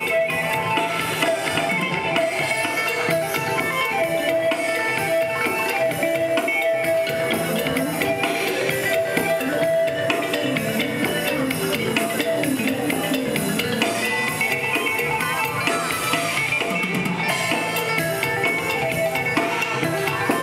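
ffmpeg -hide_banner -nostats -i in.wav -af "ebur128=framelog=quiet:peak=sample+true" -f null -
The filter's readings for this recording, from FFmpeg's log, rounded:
Integrated loudness:
  I:         -21.0 LUFS
  Threshold: -31.0 LUFS
Loudness range:
  LRA:         0.8 LU
  Threshold: -41.0 LUFS
  LRA low:   -21.5 LUFS
  LRA high:  -20.7 LUFS
Sample peak:
  Peak:       -5.0 dBFS
True peak:
  Peak:       -5.0 dBFS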